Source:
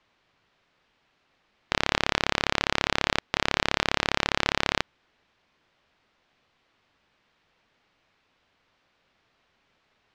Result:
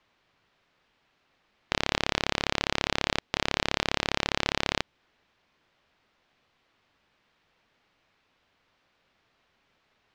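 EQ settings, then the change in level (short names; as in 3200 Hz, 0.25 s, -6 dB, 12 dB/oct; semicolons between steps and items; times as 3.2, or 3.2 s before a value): dynamic EQ 1400 Hz, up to -4 dB, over -39 dBFS, Q 0.97; -1.0 dB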